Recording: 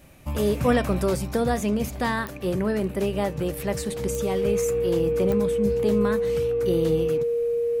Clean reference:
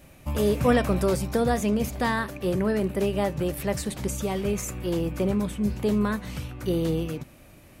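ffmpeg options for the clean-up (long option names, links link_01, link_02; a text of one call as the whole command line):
ffmpeg -i in.wav -af "adeclick=threshold=4,bandreject=frequency=470:width=30" out.wav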